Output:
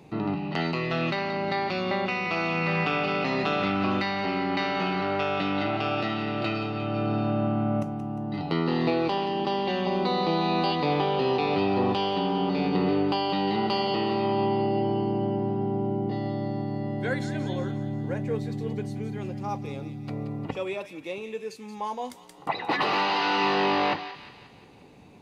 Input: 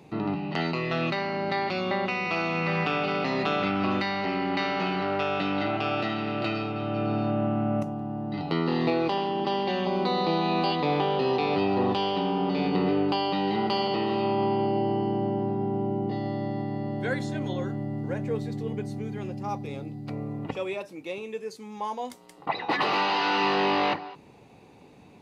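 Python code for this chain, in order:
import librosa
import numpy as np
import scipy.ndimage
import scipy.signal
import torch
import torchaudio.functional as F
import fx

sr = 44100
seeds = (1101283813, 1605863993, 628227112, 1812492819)

p1 = fx.low_shelf(x, sr, hz=72.0, db=5.5)
y = p1 + fx.echo_wet_highpass(p1, sr, ms=177, feedback_pct=52, hz=1600.0, wet_db=-10.0, dry=0)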